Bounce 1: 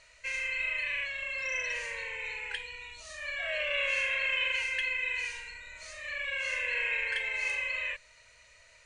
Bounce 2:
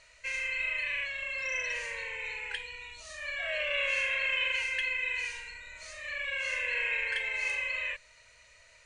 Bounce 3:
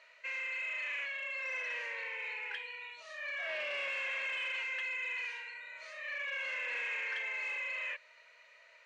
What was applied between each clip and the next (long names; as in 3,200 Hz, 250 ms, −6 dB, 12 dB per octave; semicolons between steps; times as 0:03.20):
no processing that can be heard
soft clipping −33.5 dBFS, distortion −10 dB; band-pass filter 480–2,900 Hz; level +1 dB